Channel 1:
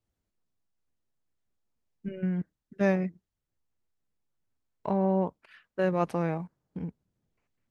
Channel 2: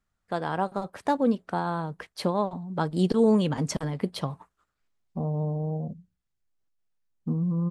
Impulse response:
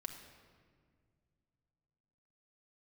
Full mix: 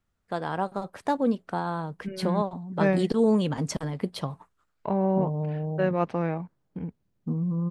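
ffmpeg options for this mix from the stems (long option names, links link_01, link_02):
-filter_complex "[0:a]lowpass=3900,volume=1.5dB[link_01];[1:a]volume=-1dB[link_02];[link_01][link_02]amix=inputs=2:normalize=0"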